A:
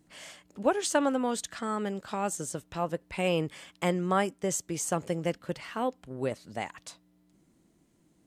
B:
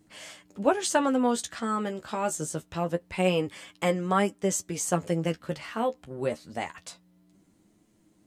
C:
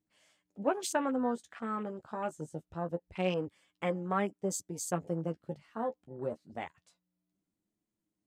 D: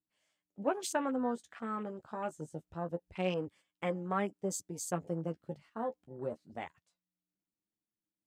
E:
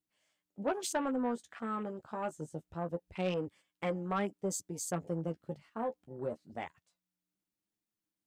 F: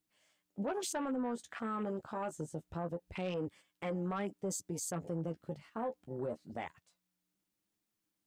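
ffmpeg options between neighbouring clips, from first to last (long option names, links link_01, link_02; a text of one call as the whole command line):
ffmpeg -i in.wav -af "flanger=delay=9.5:depth=3.9:regen=29:speed=0.25:shape=sinusoidal,volume=6dB" out.wav
ffmpeg -i in.wav -af "afwtdn=0.0141,volume=-7dB" out.wav
ffmpeg -i in.wav -af "agate=range=-9dB:threshold=-55dB:ratio=16:detection=peak,volume=-2dB" out.wav
ffmpeg -i in.wav -af "asoftclip=type=tanh:threshold=-25.5dB,volume=1.5dB" out.wav
ffmpeg -i in.wav -af "alimiter=level_in=10.5dB:limit=-24dB:level=0:latency=1:release=69,volume=-10.5dB,volume=4.5dB" out.wav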